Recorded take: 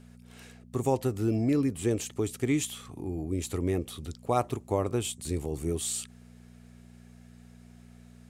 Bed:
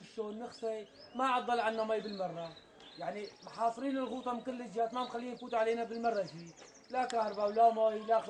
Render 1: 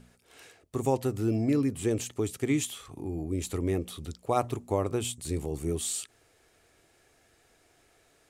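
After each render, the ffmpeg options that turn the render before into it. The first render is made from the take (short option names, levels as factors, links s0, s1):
-af "bandreject=f=60:t=h:w=4,bandreject=f=120:t=h:w=4,bandreject=f=180:t=h:w=4,bandreject=f=240:t=h:w=4"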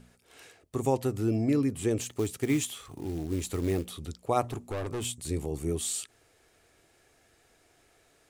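-filter_complex "[0:a]asettb=1/sr,asplit=3[s0][s1][s2];[s0]atrim=end=1.984[s3];[s1]atrim=start=1.98:end=3.86,asetpts=PTS-STARTPTS,afade=t=in:d=0.004:c=qsin,afade=t=out:st=1.876:d=0.004:c=qsin,acrusher=bits=5:mode=log:mix=0:aa=0.000001[s4];[s2]atrim=start=3.856[s5];[s3][s4]acrossfade=d=0.004:c1=hsin:c2=qsin[s6];[s6][s5]acrossfade=d=0.004:c1=qsin:c2=hsin,asettb=1/sr,asplit=3[s7][s8][s9];[s7]atrim=end=4.414[s10];[s8]atrim=start=4.41:end=5.05,asetpts=PTS-STARTPTS,afade=t=in:d=0.004:c=qsin,afade=t=out:st=0.636:d=0.004:c=qsin,volume=33.5,asoftclip=hard,volume=0.0299[s11];[s9]atrim=start=5.046[s12];[s10][s11]acrossfade=d=0.004:c1=hsin:c2=qsin[s13];[s13][s12]acrossfade=d=0.004:c1=qsin:c2=hsin"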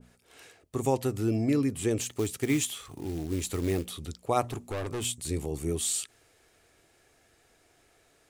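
-af "adynamicequalizer=threshold=0.00398:dfrequency=1500:dqfactor=0.7:tfrequency=1500:tqfactor=0.7:attack=5:release=100:ratio=0.375:range=1.5:mode=boostabove:tftype=highshelf"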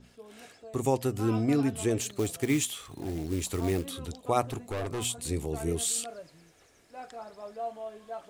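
-filter_complex "[1:a]volume=0.335[s0];[0:a][s0]amix=inputs=2:normalize=0"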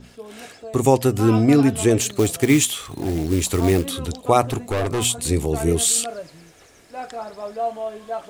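-af "volume=3.55,alimiter=limit=0.794:level=0:latency=1"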